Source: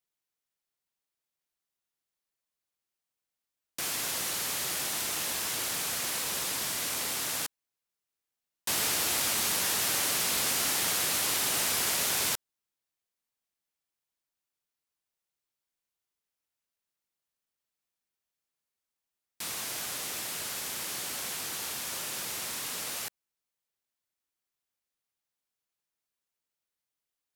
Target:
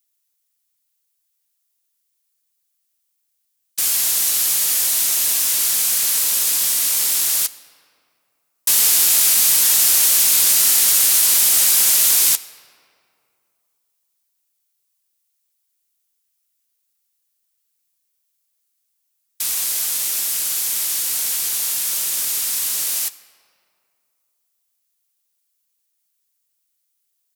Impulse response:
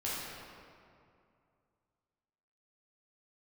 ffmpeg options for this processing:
-filter_complex "[0:a]crystalizer=i=5.5:c=0,asplit=2[s0][s1];[s1]asetrate=29433,aresample=44100,atempo=1.49831,volume=0.282[s2];[s0][s2]amix=inputs=2:normalize=0,asplit=2[s3][s4];[1:a]atrim=start_sample=2205,lowshelf=f=200:g=-11.5[s5];[s4][s5]afir=irnorm=-1:irlink=0,volume=0.119[s6];[s3][s6]amix=inputs=2:normalize=0,volume=0.75"

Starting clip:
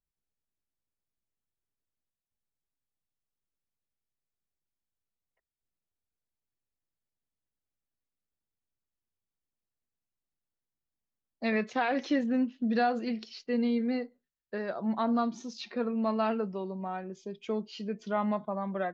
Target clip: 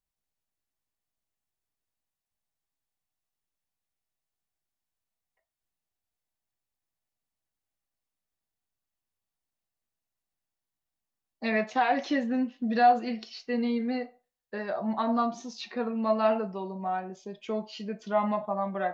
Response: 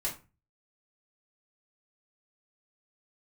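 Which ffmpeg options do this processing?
-filter_complex "[0:a]asplit=2[s0][s1];[s1]highpass=f=680:t=q:w=4.9[s2];[1:a]atrim=start_sample=2205,lowshelf=f=370:g=-11.5[s3];[s2][s3]afir=irnorm=-1:irlink=0,volume=0.355[s4];[s0][s4]amix=inputs=2:normalize=0"

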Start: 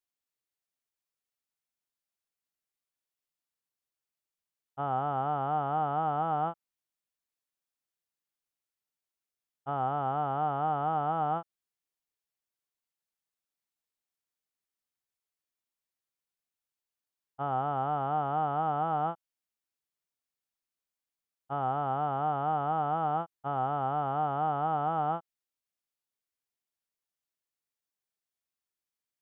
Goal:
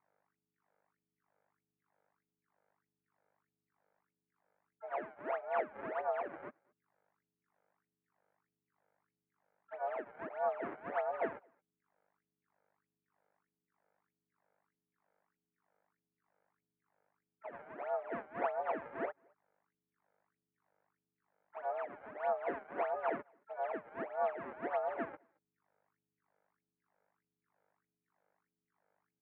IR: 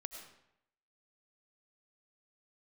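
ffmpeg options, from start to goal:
-filter_complex "[0:a]agate=range=0.0224:threshold=0.0708:ratio=3:detection=peak,afftfilt=real='re*gte(hypot(re,im),0.0398)':imag='im*gte(hypot(re,im),0.0398)':win_size=1024:overlap=0.75,aeval=exprs='sgn(val(0))*max(abs(val(0))-0.00133,0)':c=same,aecho=1:1:4.3:0.95,aeval=exprs='val(0)+0.000501*(sin(2*PI*50*n/s)+sin(2*PI*2*50*n/s)/2+sin(2*PI*3*50*n/s)/3+sin(2*PI*4*50*n/s)/4+sin(2*PI*5*50*n/s)/5)':c=same,acrusher=samples=32:mix=1:aa=0.000001:lfo=1:lforange=51.2:lforate=1.6,asplit=4[s0][s1][s2][s3];[s1]asetrate=33038,aresample=44100,atempo=1.33484,volume=0.2[s4];[s2]asetrate=58866,aresample=44100,atempo=0.749154,volume=0.224[s5];[s3]asetrate=88200,aresample=44100,atempo=0.5,volume=0.126[s6];[s0][s4][s5][s6]amix=inputs=4:normalize=0,asplit=2[s7][s8];[s8]adelay=220,highpass=300,lowpass=3400,asoftclip=type=hard:threshold=0.0178,volume=0.0398[s9];[s7][s9]amix=inputs=2:normalize=0,highpass=f=390:t=q:w=0.5412,highpass=f=390:t=q:w=1.307,lowpass=f=2100:t=q:w=0.5176,lowpass=f=2100:t=q:w=0.7071,lowpass=f=2100:t=q:w=1.932,afreqshift=-77,volume=1.12"

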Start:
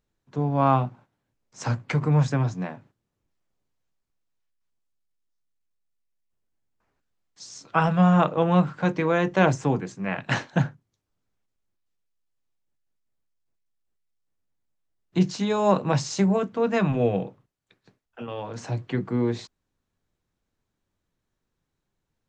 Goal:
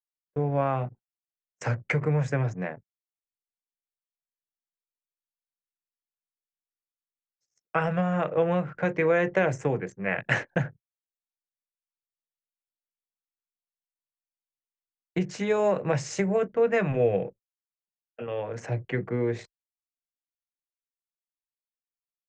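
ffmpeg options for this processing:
-af "anlmdn=0.158,acompressor=threshold=0.1:ratio=6,equalizer=f=250:t=o:w=1:g=-7,equalizer=f=500:t=o:w=1:g=7,equalizer=f=1000:t=o:w=1:g=-7,equalizer=f=2000:t=o:w=1:g=9,equalizer=f=4000:t=o:w=1:g=-11,agate=range=0.02:threshold=0.00708:ratio=16:detection=peak"

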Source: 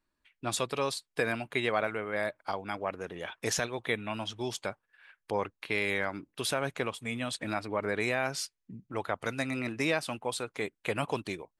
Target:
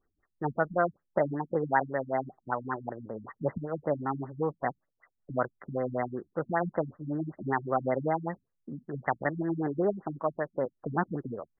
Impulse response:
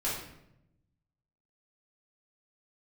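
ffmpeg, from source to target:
-af "asetrate=55563,aresample=44100,atempo=0.793701,afftfilt=real='re*lt(b*sr/1024,230*pow(2100/230,0.5+0.5*sin(2*PI*5.2*pts/sr)))':imag='im*lt(b*sr/1024,230*pow(2100/230,0.5+0.5*sin(2*PI*5.2*pts/sr)))':win_size=1024:overlap=0.75,volume=1.88"

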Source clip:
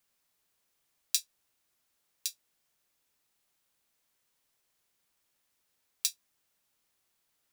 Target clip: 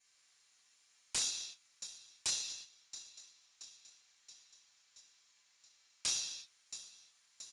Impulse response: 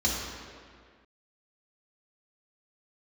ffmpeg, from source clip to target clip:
-filter_complex "[0:a]acompressor=threshold=0.0251:ratio=8,highpass=1500,aecho=1:1:6.9:0.89,aecho=1:1:676|1352|2028|2704|3380:0.126|0.0755|0.0453|0.0272|0.0163,flanger=delay=20:depth=7.2:speed=1.2,asplit=3[s0][s1][s2];[s0]afade=t=out:st=2.26:d=0.02[s3];[s1]lowpass=f=7500:w=0.5412,lowpass=f=7500:w=1.3066,afade=t=in:st=2.26:d=0.02,afade=t=out:st=6.06:d=0.02[s4];[s2]afade=t=in:st=6.06:d=0.02[s5];[s3][s4][s5]amix=inputs=3:normalize=0[s6];[1:a]atrim=start_sample=2205,afade=t=out:st=0.41:d=0.01,atrim=end_sample=18522[s7];[s6][s7]afir=irnorm=-1:irlink=0,aeval=exprs='0.0398*(abs(mod(val(0)/0.0398+3,4)-2)-1)':c=same,volume=1.12" -ar 22050 -c:a adpcm_ima_wav

